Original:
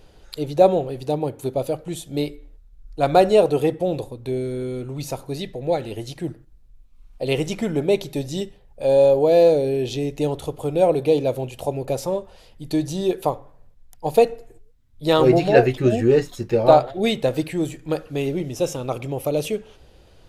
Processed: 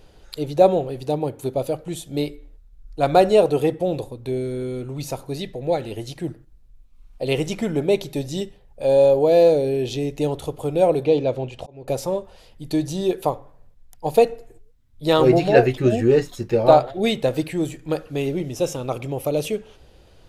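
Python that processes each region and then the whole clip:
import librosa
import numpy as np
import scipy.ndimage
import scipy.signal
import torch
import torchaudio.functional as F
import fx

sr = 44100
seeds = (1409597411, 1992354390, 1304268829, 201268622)

y = fx.chain(x, sr, fx.lowpass(hz=4800.0, slope=12),
    fx.auto_swell(attack_ms=487.0), at=(11.05, 11.88))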